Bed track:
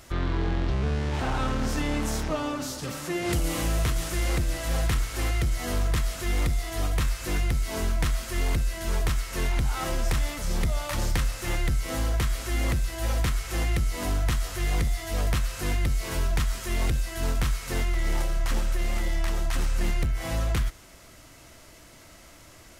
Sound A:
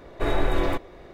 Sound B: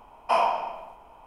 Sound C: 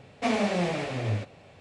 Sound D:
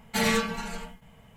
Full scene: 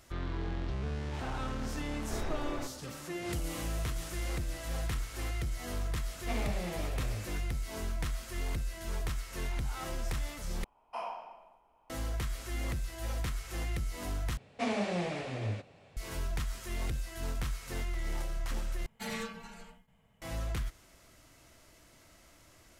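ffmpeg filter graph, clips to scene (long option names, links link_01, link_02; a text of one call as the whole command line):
ffmpeg -i bed.wav -i cue0.wav -i cue1.wav -i cue2.wav -i cue3.wav -filter_complex "[3:a]asplit=2[link_01][link_02];[0:a]volume=-9.5dB[link_03];[2:a]aresample=32000,aresample=44100[link_04];[link_03]asplit=4[link_05][link_06][link_07][link_08];[link_05]atrim=end=10.644[link_09];[link_04]atrim=end=1.26,asetpts=PTS-STARTPTS,volume=-17dB[link_10];[link_06]atrim=start=11.896:end=14.374[link_11];[link_02]atrim=end=1.6,asetpts=PTS-STARTPTS,volume=-6.5dB[link_12];[link_07]atrim=start=15.966:end=18.864[link_13];[4:a]atrim=end=1.36,asetpts=PTS-STARTPTS,volume=-14dB[link_14];[link_08]atrim=start=20.216[link_15];[1:a]atrim=end=1.13,asetpts=PTS-STARTPTS,volume=-15dB,afade=type=in:duration=0.004:curve=hsin,afade=type=out:start_time=1.126:duration=0.004:curve=hsin,adelay=1900[link_16];[link_01]atrim=end=1.6,asetpts=PTS-STARTPTS,volume=-12dB,afade=type=in:duration=0.004:curve=hsin,afade=type=out:start_time=1.596:duration=0.004:curve=hsin,adelay=6050[link_17];[link_09][link_10]acrossfade=duration=0.004:curve1=hsin:curve2=hsin[link_18];[link_18][link_11]acrossfade=duration=0.004:curve1=hsin:curve2=hsin[link_19];[link_19][link_12]acrossfade=duration=0.004:curve1=hsin:curve2=hsin[link_20];[link_20][link_13]acrossfade=duration=0.004:curve1=hsin:curve2=hsin[link_21];[link_21][link_14]acrossfade=duration=0.004:curve1=hsin:curve2=hsin[link_22];[link_22][link_15]acrossfade=duration=0.004:curve1=hsin:curve2=hsin[link_23];[link_23][link_16][link_17]amix=inputs=3:normalize=0" out.wav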